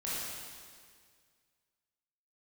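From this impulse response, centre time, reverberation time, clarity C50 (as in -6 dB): 139 ms, 1.9 s, -4.0 dB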